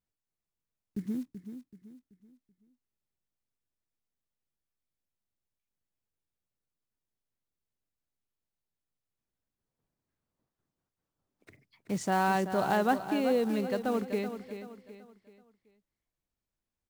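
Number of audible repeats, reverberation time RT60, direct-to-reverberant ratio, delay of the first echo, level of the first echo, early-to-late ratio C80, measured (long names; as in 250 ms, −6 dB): 3, no reverb audible, no reverb audible, 381 ms, −10.0 dB, no reverb audible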